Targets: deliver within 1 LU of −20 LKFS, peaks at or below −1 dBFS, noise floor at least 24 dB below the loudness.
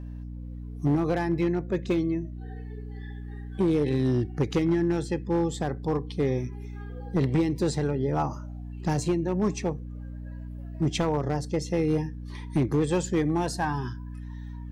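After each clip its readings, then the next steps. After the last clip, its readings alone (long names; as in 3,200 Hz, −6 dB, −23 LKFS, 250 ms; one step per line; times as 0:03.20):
share of clipped samples 1.4%; peaks flattened at −18.0 dBFS; mains hum 60 Hz; hum harmonics up to 300 Hz; level of the hum −35 dBFS; integrated loudness −27.5 LKFS; sample peak −18.0 dBFS; target loudness −20.0 LKFS
→ clipped peaks rebuilt −18 dBFS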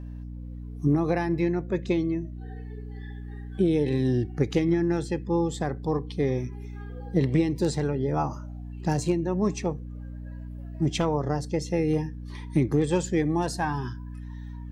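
share of clipped samples 0.0%; mains hum 60 Hz; hum harmonics up to 300 Hz; level of the hum −35 dBFS
→ mains-hum notches 60/120/180/240/300 Hz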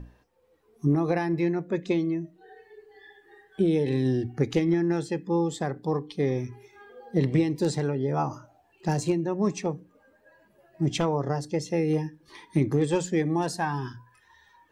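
mains hum none found; integrated loudness −27.0 LKFS; sample peak −12.0 dBFS; target loudness −20.0 LKFS
→ level +7 dB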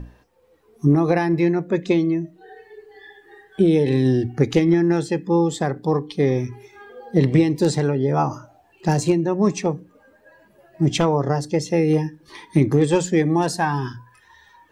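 integrated loudness −20.0 LKFS; sample peak −5.0 dBFS; background noise floor −57 dBFS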